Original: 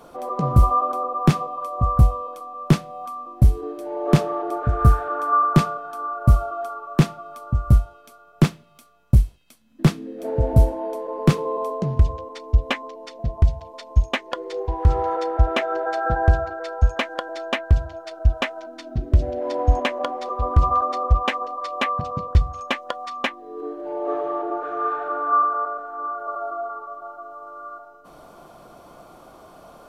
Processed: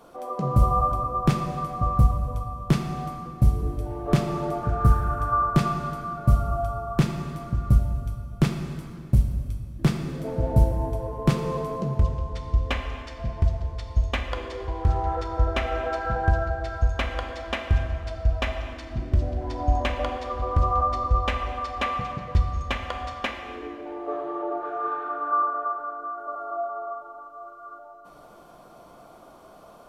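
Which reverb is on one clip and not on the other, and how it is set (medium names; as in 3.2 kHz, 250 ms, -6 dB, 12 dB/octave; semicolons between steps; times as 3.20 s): plate-style reverb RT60 2.4 s, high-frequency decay 0.7×, DRR 3.5 dB; trim -5 dB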